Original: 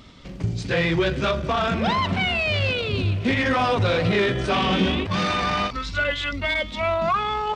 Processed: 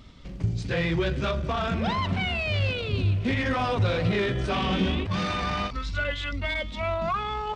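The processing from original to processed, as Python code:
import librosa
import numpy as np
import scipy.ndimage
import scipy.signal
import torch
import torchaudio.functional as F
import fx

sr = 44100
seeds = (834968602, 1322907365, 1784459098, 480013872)

y = fx.low_shelf(x, sr, hz=110.0, db=10.0)
y = y * librosa.db_to_amplitude(-6.0)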